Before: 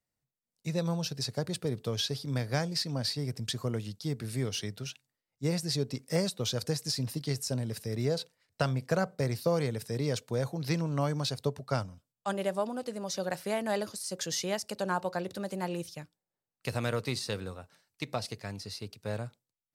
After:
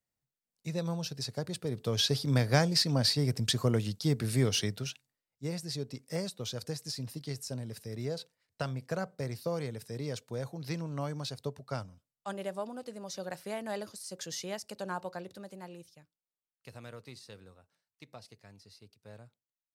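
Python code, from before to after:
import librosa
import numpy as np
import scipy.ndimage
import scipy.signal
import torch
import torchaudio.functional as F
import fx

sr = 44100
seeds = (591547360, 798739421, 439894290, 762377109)

y = fx.gain(x, sr, db=fx.line((1.65, -3.0), (2.11, 5.0), (4.62, 5.0), (5.44, -6.0), (15.03, -6.0), (16.01, -15.5)))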